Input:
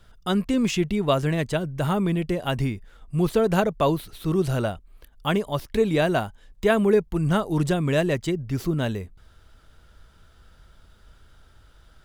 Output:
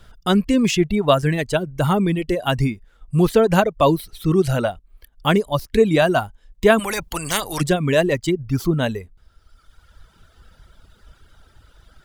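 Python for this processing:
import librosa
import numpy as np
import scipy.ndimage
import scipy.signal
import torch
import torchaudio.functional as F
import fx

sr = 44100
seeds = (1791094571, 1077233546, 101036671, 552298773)

y = fx.dereverb_blind(x, sr, rt60_s=1.5)
y = fx.spectral_comp(y, sr, ratio=4.0, at=(6.78, 7.6), fade=0.02)
y = y * librosa.db_to_amplitude(6.5)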